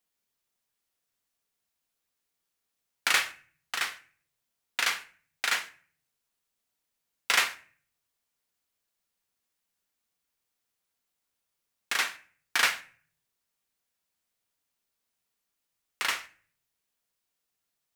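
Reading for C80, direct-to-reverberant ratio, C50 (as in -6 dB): 20.0 dB, 9.0 dB, 17.0 dB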